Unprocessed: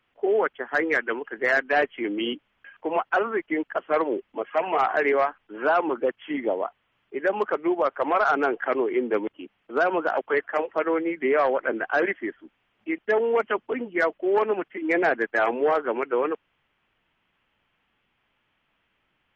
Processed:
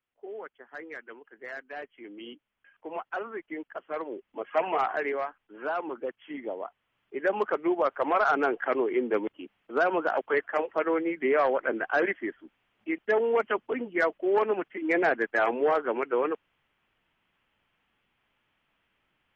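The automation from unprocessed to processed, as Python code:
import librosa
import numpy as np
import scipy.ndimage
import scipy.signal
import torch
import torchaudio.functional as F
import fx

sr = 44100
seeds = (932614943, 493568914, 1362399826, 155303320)

y = fx.gain(x, sr, db=fx.line((1.89, -18.0), (2.95, -11.0), (4.18, -11.0), (4.59, -1.5), (5.17, -9.5), (6.53, -9.5), (7.29, -2.5)))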